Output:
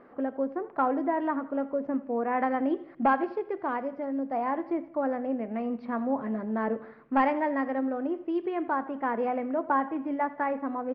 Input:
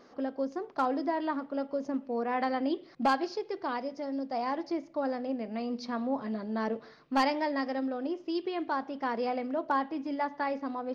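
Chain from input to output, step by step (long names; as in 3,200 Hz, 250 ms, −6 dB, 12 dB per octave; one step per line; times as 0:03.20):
low-pass filter 2,200 Hz 24 dB per octave
on a send: repeating echo 84 ms, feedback 47%, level −18 dB
on the sum: level +3 dB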